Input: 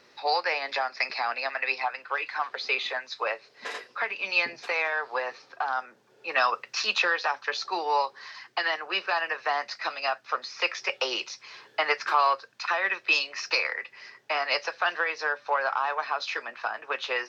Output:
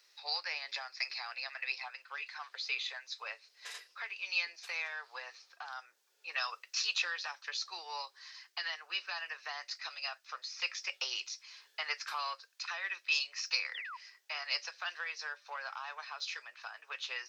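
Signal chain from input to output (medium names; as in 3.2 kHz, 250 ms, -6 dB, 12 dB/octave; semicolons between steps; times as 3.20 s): high-pass 290 Hz 24 dB/octave; differentiator; painted sound fall, 13.74–13.97 s, 910–3700 Hz -44 dBFS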